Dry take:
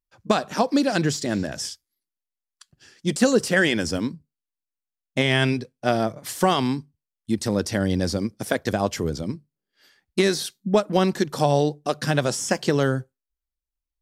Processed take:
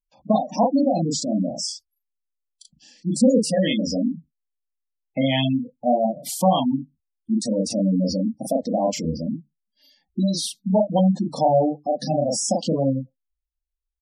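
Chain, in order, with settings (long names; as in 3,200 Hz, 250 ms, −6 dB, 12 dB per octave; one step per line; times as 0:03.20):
phaser with its sweep stopped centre 390 Hz, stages 6
double-tracking delay 37 ms −2 dB
gate on every frequency bin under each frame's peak −15 dB strong
level +2.5 dB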